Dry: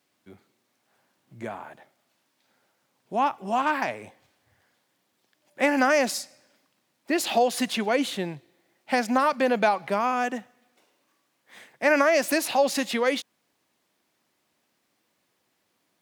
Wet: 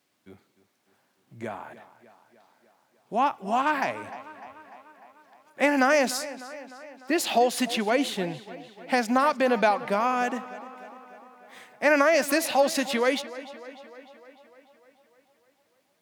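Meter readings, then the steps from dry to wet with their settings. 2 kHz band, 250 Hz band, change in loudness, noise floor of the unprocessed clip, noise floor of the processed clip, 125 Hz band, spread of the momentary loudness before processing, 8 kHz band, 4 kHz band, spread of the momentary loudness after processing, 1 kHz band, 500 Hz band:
0.0 dB, 0.0 dB, 0.0 dB, -74 dBFS, -70 dBFS, 0.0 dB, 15 LU, 0.0 dB, 0.0 dB, 20 LU, 0.0 dB, 0.0 dB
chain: tape echo 0.3 s, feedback 66%, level -15.5 dB, low-pass 5600 Hz

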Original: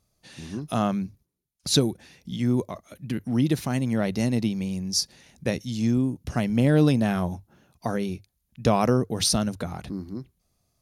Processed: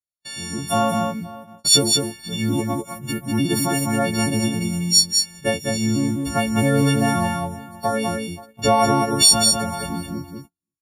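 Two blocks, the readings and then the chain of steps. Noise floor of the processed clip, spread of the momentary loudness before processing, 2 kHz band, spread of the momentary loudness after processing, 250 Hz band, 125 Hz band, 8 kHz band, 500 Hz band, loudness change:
-84 dBFS, 16 LU, +8.5 dB, 15 LU, +2.5 dB, +2.0 dB, +12.5 dB, +4.5 dB, +6.0 dB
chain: frequency quantiser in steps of 4 st; on a send: echo 0.201 s -5 dB; on the sum: dynamic EQ 740 Hz, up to +6 dB, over -37 dBFS, Q 1.2; outdoor echo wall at 90 m, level -22 dB; in parallel at +1.5 dB: compressor, threshold -28 dBFS, peak gain reduction 18.5 dB; on the sum: gate -36 dBFS, range -40 dB; gain -2 dB

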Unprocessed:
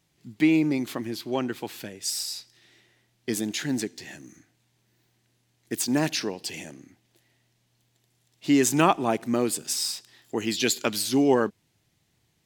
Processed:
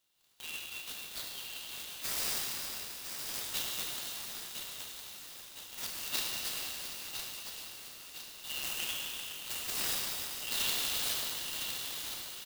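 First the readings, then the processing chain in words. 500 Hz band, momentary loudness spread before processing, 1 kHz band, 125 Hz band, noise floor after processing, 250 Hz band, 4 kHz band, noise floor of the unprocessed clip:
-24.0 dB, 15 LU, -16.5 dB, -21.5 dB, -50 dBFS, -30.5 dB, -2.0 dB, -70 dBFS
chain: de-esser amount 55%; rippled Chebyshev high-pass 2700 Hz, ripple 6 dB; feedback echo 1.009 s, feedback 52%, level -7 dB; Schroeder reverb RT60 3.5 s, combs from 25 ms, DRR -3.5 dB; clock jitter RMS 0.036 ms

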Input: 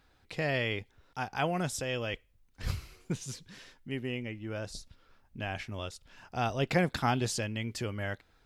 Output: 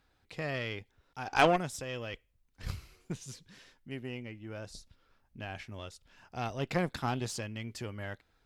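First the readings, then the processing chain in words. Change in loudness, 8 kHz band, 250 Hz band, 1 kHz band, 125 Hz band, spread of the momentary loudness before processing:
-1.5 dB, -4.5 dB, -3.0 dB, +1.0 dB, -4.0 dB, 14 LU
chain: spectral gain 1.26–1.56, 250–8100 Hz +12 dB; added harmonics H 8 -22 dB, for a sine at -3.5 dBFS; gain -5 dB

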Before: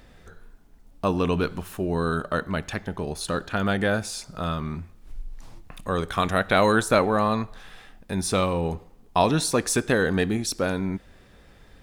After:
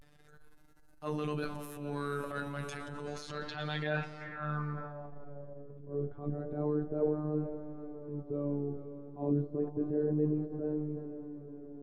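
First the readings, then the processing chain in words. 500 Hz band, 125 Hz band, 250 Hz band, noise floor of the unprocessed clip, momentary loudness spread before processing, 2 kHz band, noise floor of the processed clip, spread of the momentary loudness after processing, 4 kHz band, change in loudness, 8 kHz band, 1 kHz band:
-10.5 dB, -8.5 dB, -8.5 dB, -52 dBFS, 12 LU, -15.0 dB, -58 dBFS, 13 LU, -17.0 dB, -11.5 dB, under -25 dB, -17.0 dB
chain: flange 0.28 Hz, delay 8.4 ms, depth 8 ms, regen +35%; robotiser 147 Hz; on a send: diffused feedback echo 0.505 s, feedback 70%, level -13.5 dB; on the sum: transient shaper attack -9 dB, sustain +6 dB; de-esser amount 80%; in parallel at -11 dB: overloaded stage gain 24 dB; on the sum: low-pass sweep 12000 Hz -> 380 Hz, 2.57–5.84; vibrato 0.31 Hz 54 cents; high shelf 12000 Hz -2.5 dB; gain -6.5 dB

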